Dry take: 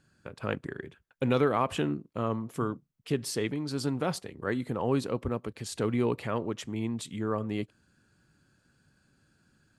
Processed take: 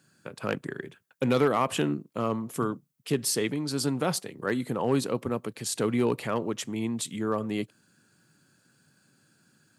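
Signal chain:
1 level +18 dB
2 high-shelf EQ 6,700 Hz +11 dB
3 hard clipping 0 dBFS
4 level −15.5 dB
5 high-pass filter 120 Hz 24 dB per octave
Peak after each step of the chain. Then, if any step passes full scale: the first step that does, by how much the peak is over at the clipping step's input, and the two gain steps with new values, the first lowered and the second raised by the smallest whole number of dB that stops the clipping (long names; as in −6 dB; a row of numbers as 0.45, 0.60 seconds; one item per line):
+5.5, +6.0, 0.0, −15.5, −11.0 dBFS
step 1, 6.0 dB
step 1 +12 dB, step 4 −9.5 dB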